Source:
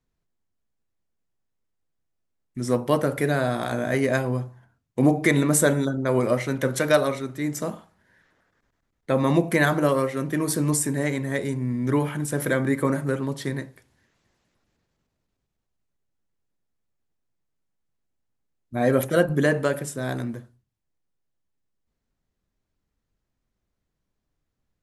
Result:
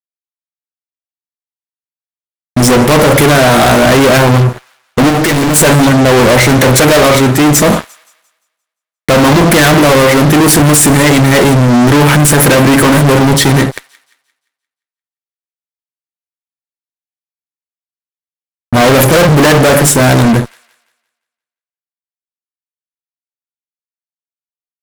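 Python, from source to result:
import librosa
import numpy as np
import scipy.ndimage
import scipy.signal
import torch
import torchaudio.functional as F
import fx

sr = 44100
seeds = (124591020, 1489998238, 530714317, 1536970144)

y = fx.fuzz(x, sr, gain_db=41.0, gate_db=-47.0)
y = fx.echo_wet_highpass(y, sr, ms=174, feedback_pct=37, hz=1600.0, wet_db=-21.5)
y = fx.clip_hard(y, sr, threshold_db=-17.5, at=(5.09, 5.56))
y = y * 10.0 ** (8.0 / 20.0)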